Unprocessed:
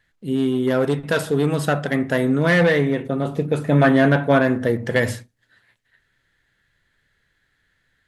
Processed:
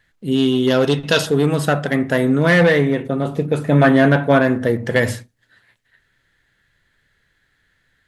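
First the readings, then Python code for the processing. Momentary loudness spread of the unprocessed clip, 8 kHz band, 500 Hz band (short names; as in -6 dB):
8 LU, +4.5 dB, +3.0 dB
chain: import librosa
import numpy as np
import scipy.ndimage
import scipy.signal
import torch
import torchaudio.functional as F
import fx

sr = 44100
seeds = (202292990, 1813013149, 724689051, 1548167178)

p1 = fx.spec_box(x, sr, start_s=0.32, length_s=0.94, low_hz=2500.0, high_hz=6900.0, gain_db=9)
p2 = fx.rider(p1, sr, range_db=4, speed_s=2.0)
p3 = p1 + F.gain(torch.from_numpy(p2), 2.5).numpy()
y = F.gain(torch.from_numpy(p3), -5.0).numpy()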